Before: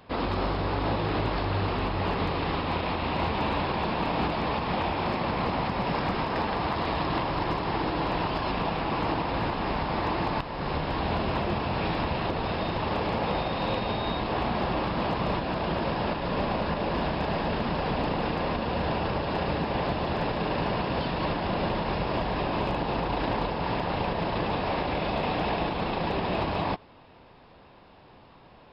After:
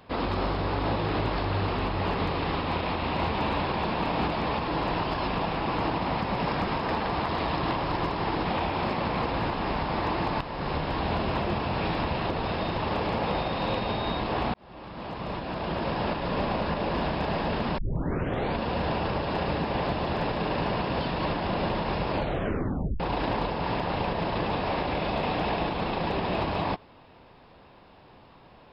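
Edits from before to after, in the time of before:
4.68–5.49 s: swap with 7.92–9.26 s
14.54–16.01 s: fade in
17.78 s: tape start 0.81 s
22.11 s: tape stop 0.89 s

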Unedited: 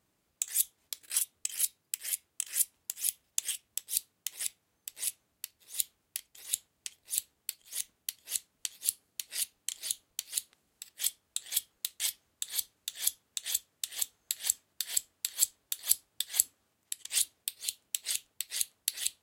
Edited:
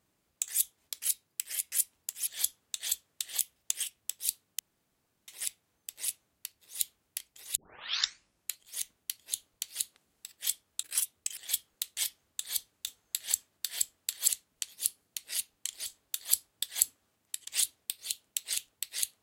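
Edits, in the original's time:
1.02–1.56 s: move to 11.40 s
2.26–2.53 s: delete
4.27 s: insert room tone 0.69 s
6.55 s: tape start 1.04 s
8.31–9.89 s: move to 15.44 s
12.90–14.03 s: move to 3.08 s

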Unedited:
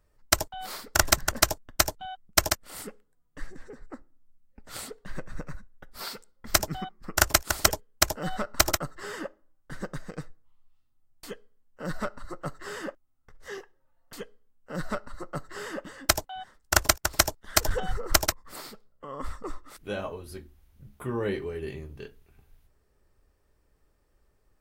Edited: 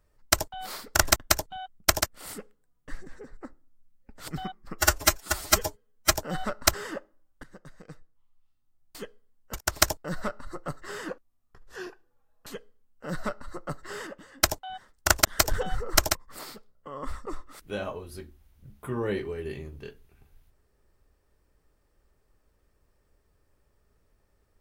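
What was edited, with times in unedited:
1.16–1.65 s: delete
4.77–6.65 s: delete
7.15–8.04 s: stretch 1.5×
8.66–9.02 s: delete
9.72–11.32 s: fade in, from -17.5 dB
12.86–14.18 s: speed 92%
15.73–16.06 s: gain -6.5 dB
16.91–17.42 s: move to 11.82 s

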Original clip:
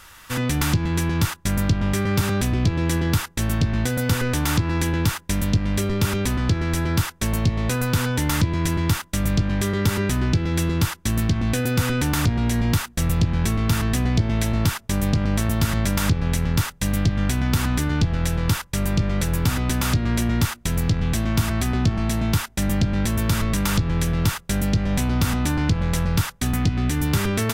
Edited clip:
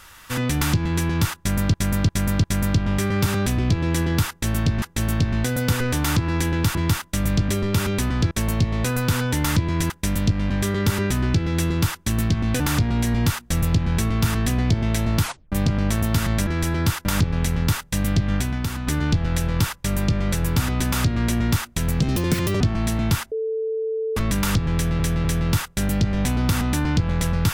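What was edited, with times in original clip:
1.39–1.74 s: loop, 4 plays
3.23–3.77 s: loop, 2 plays
5.16–5.76 s: swap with 8.75–9.49 s
6.58–7.16 s: move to 15.94 s
11.59–12.07 s: delete
14.70 s: tape stop 0.29 s
17.24–17.76 s: fade out quadratic, to -7 dB
20.91–21.83 s: speed 157%
22.54–23.39 s: bleep 443 Hz -22 dBFS
23.97–24.22 s: loop, 3 plays

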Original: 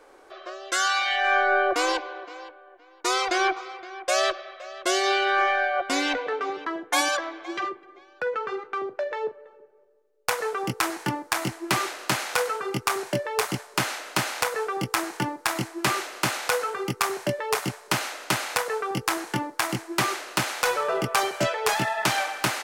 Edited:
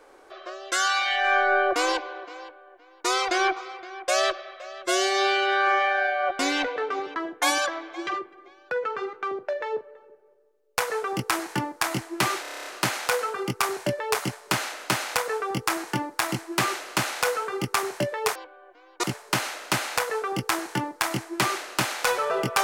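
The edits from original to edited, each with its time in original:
2.40–3.08 s: copy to 17.62 s
4.82–5.81 s: stretch 1.5×
11.92 s: stutter 0.03 s, 9 plays

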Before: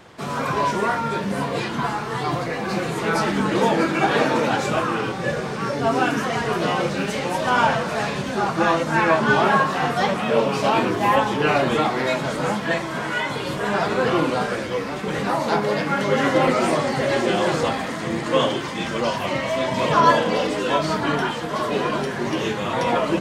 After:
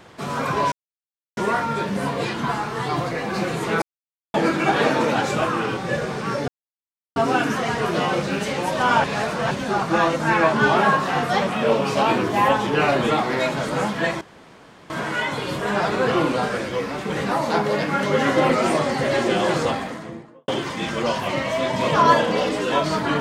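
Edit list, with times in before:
0.72 s: insert silence 0.65 s
3.17–3.69 s: mute
5.83 s: insert silence 0.68 s
7.71–8.18 s: reverse
12.88 s: insert room tone 0.69 s
17.57–18.46 s: studio fade out

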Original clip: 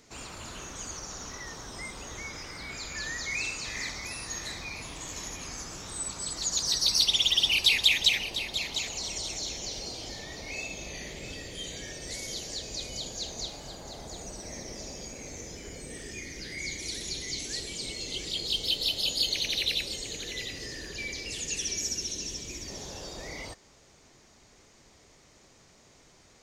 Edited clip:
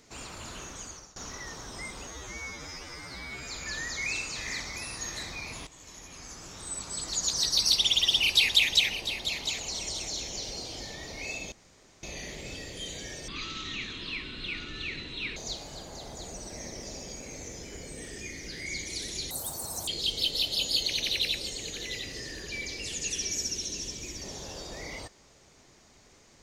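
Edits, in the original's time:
0.50–1.16 s: fade out equal-power, to -21.5 dB
2.07–2.78 s: stretch 2×
4.96–6.37 s: fade in, from -14.5 dB
10.81 s: insert room tone 0.51 s
12.06–13.29 s: speed 59%
17.23–18.34 s: speed 194%

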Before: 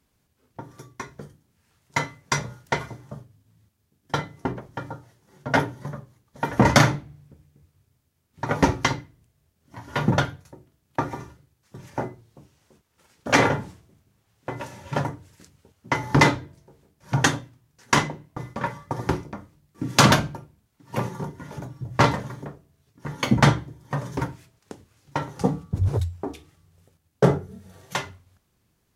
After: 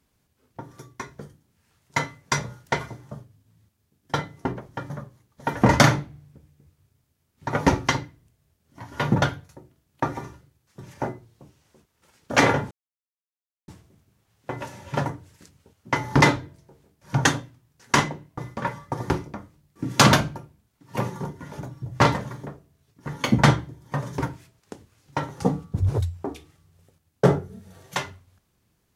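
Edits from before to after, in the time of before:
4.90–5.86 s: delete
13.67 s: insert silence 0.97 s

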